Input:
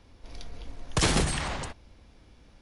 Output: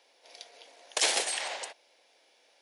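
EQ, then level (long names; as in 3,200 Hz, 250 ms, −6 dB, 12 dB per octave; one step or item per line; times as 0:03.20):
high-pass filter 540 Hz 24 dB per octave
parametric band 1,200 Hz −11.5 dB 0.74 octaves
+2.0 dB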